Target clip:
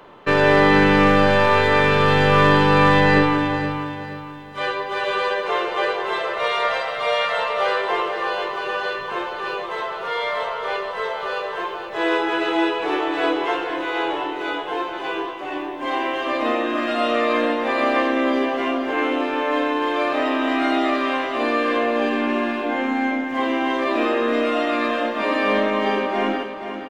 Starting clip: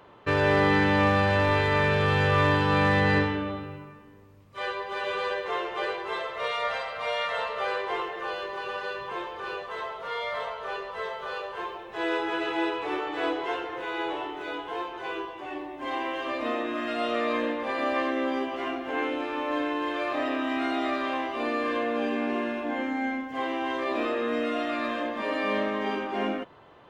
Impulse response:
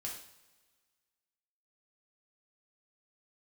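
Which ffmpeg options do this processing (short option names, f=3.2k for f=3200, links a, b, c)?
-filter_complex "[0:a]acrossover=split=110[a][b];[a]aeval=exprs='abs(val(0))':c=same[c];[b]aecho=1:1:474|948|1422|1896:0.355|0.135|0.0512|0.0195[d];[c][d]amix=inputs=2:normalize=0,volume=7.5dB"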